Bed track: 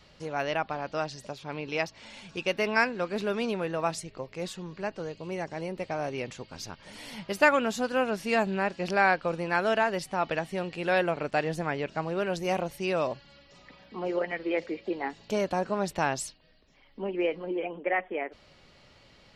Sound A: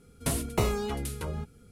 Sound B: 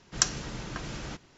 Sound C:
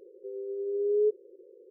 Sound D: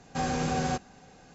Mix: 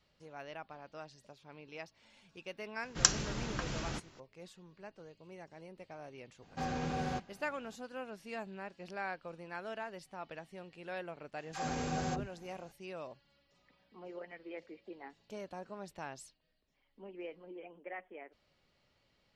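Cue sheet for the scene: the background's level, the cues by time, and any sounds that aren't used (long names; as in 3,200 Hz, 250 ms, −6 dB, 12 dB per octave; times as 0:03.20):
bed track −17 dB
0:02.83: mix in B −1 dB
0:06.42: mix in D −7.5 dB + low-pass filter 4,600 Hz
0:11.38: mix in D −7.5 dB + all-pass dispersion lows, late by 123 ms, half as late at 400 Hz
not used: A, C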